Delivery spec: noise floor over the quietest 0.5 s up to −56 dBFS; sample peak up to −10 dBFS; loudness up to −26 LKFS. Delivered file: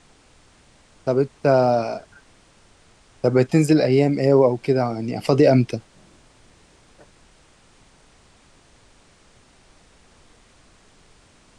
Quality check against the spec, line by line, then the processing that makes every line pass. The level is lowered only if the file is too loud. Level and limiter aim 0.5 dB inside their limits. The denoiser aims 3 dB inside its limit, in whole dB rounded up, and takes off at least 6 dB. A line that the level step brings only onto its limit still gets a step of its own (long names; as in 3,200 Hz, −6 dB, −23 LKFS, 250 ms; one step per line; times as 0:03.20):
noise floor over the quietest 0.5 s −54 dBFS: out of spec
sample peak −5.0 dBFS: out of spec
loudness −19.0 LKFS: out of spec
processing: level −7.5 dB